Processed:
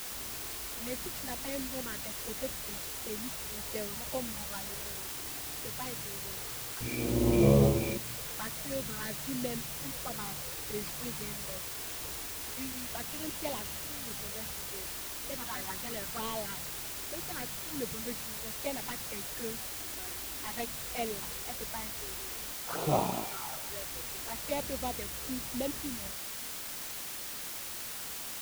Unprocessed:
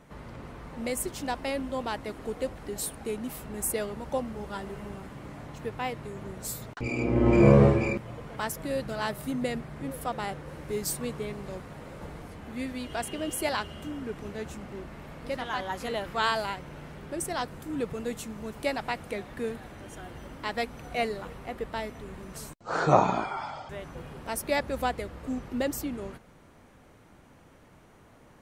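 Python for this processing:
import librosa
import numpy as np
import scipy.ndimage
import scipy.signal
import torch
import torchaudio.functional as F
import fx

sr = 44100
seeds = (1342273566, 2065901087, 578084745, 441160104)

y = fx.cvsd(x, sr, bps=32000)
y = fx.env_flanger(y, sr, rest_ms=5.1, full_db=-26.0)
y = fx.quant_dither(y, sr, seeds[0], bits=6, dither='triangular')
y = y * 10.0 ** (-4.5 / 20.0)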